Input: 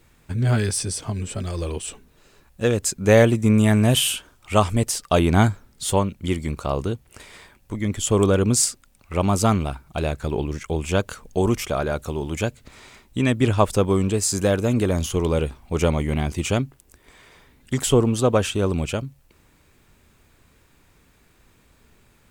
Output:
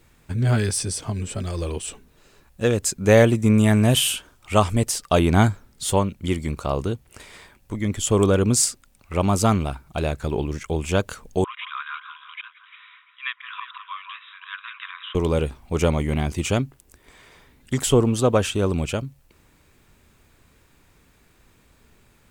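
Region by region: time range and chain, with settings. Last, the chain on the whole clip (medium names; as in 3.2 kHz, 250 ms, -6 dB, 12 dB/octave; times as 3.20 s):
11.44–15.15 s: slow attack 112 ms + brick-wall FIR band-pass 970–3900 Hz + echo whose repeats swap between lows and highs 173 ms, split 1.6 kHz, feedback 51%, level -6.5 dB
whole clip: none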